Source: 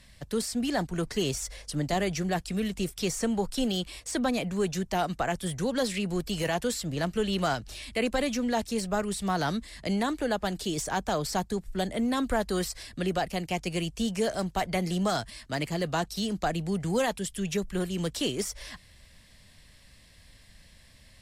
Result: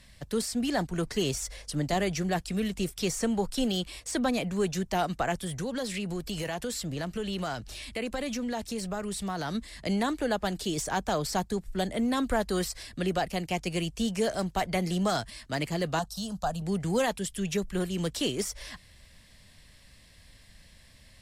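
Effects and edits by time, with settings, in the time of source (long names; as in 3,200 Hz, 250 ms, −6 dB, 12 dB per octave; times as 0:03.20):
0:05.43–0:09.55: downward compressor 3 to 1, threshold −30 dBFS
0:15.99–0:16.62: phaser with its sweep stopped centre 880 Hz, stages 4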